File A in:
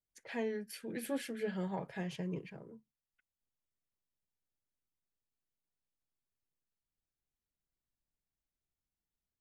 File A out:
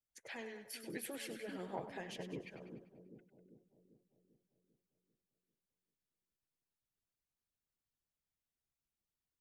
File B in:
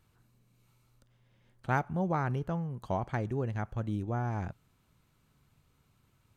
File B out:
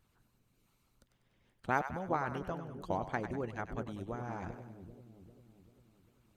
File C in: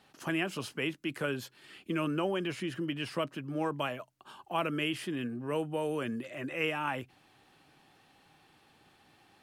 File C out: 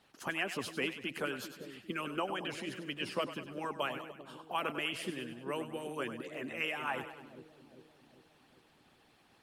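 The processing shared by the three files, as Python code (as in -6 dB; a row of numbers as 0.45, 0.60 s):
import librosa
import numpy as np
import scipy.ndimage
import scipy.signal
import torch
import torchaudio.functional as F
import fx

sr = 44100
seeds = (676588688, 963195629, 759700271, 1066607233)

y = fx.echo_split(x, sr, split_hz=490.0, low_ms=395, high_ms=98, feedback_pct=52, wet_db=-8)
y = fx.hpss(y, sr, part='harmonic', gain_db=-14)
y = y * librosa.db_to_amplitude(1.0)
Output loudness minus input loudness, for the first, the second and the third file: -6.5, -4.5, -3.5 LU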